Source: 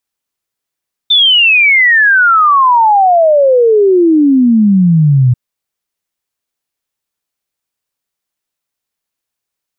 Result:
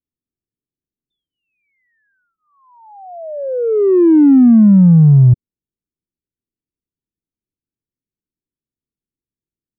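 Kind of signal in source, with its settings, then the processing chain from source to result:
exponential sine sweep 3,600 Hz → 120 Hz 4.24 s −4.5 dBFS
inverse Chebyshev low-pass filter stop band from 1,200 Hz, stop band 60 dB
in parallel at −8.5 dB: soft clipping −16 dBFS

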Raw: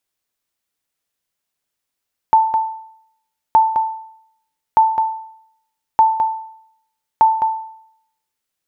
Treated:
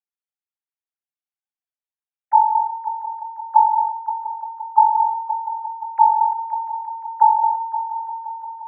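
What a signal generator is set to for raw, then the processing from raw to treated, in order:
ping with an echo 886 Hz, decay 0.69 s, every 1.22 s, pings 5, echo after 0.21 s, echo −8 dB −4.5 dBFS
three sine waves on the formant tracks
on a send: echo machine with several playback heads 174 ms, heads all three, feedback 66%, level −14.5 dB

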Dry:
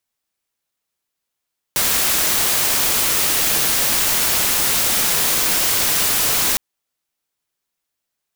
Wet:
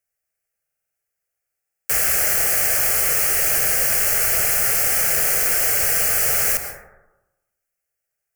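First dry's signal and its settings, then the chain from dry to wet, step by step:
noise white, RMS −17.5 dBFS 4.81 s
phaser with its sweep stopped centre 1,000 Hz, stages 6
dense smooth reverb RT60 1 s, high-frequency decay 0.3×, pre-delay 110 ms, DRR 6.5 dB
buffer that repeats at 0:00.63/0:01.57, samples 2,048, times 6

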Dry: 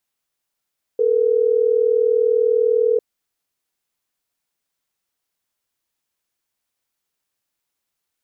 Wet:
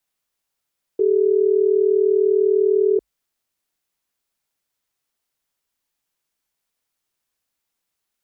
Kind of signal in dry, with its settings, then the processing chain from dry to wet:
call progress tone ringback tone, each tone −16.5 dBFS
frequency shifter −53 Hz

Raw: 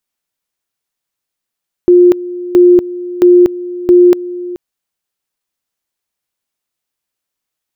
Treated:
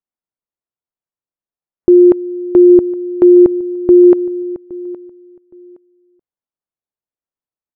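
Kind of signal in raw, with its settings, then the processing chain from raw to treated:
tone at two levels in turn 355 Hz −2 dBFS, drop 17 dB, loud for 0.24 s, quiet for 0.43 s, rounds 4
low-pass filter 1,100 Hz 12 dB per octave
noise reduction from a noise print of the clip's start 9 dB
repeating echo 817 ms, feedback 24%, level −20.5 dB

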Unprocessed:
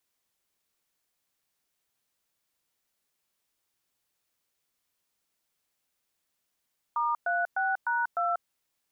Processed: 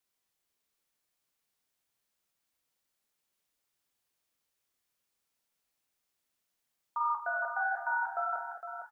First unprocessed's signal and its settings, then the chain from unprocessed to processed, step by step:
touch tones "*36#2", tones 190 ms, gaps 112 ms, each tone −27.5 dBFS
flanger 1.4 Hz, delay 3.6 ms, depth 8.1 ms, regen −71%
double-tracking delay 28 ms −11.5 dB
multi-tap delay 48/218/460/807 ms −10/−11/−8.5/−16 dB

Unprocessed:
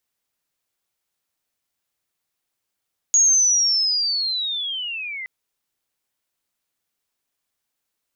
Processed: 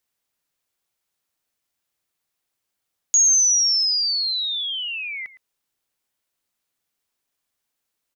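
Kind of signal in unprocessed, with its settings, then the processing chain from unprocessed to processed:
glide linear 6,700 Hz → 2,000 Hz −11.5 dBFS → −28.5 dBFS 2.12 s
slap from a distant wall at 19 metres, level −16 dB

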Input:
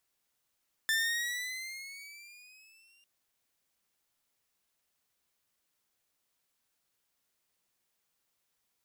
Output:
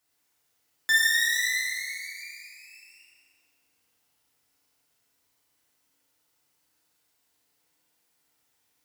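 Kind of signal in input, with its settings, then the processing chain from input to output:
pitch glide with a swell saw, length 2.15 s, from 1,770 Hz, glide +8 semitones, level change −37.5 dB, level −23 dB
high-pass filter 49 Hz 12 dB per octave
in parallel at −12 dB: bit reduction 6 bits
on the sum: feedback delay network reverb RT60 2.3 s, low-frequency decay 0.9×, high-frequency decay 0.7×, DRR −7 dB

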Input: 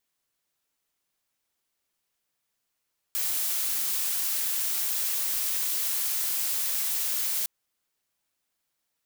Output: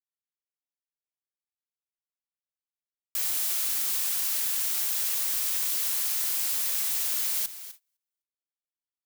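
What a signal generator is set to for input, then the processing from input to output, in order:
noise blue, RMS −28 dBFS 4.31 s
repeating echo 254 ms, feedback 30%, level −13.5 dB
noise gate −45 dBFS, range −29 dB

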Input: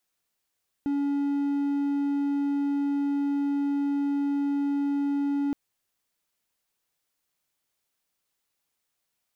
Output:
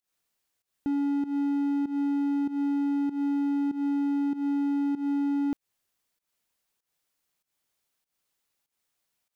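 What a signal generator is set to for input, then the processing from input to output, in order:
tone triangle 283 Hz −21.5 dBFS 4.67 s
fake sidechain pumping 97 BPM, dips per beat 1, −16 dB, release 183 ms

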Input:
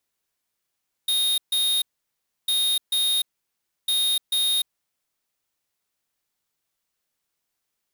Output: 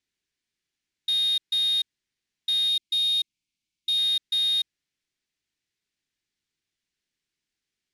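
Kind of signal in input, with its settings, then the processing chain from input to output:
beeps in groups square 3,710 Hz, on 0.30 s, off 0.14 s, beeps 2, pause 0.66 s, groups 3, −22 dBFS
gain on a spectral selection 0:02.69–0:03.98, 340–2,100 Hz −12 dB
low-pass filter 5,800 Hz 12 dB per octave
flat-topped bell 810 Hz −11.5 dB

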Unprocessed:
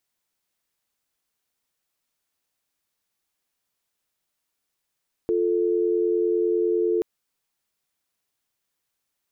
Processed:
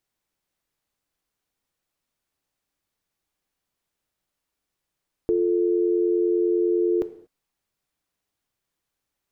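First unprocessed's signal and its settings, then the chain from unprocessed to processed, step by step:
call progress tone dial tone, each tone −22 dBFS 1.73 s
spectral tilt −1.5 dB per octave
reverb whose tail is shaped and stops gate 260 ms falling, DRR 11 dB

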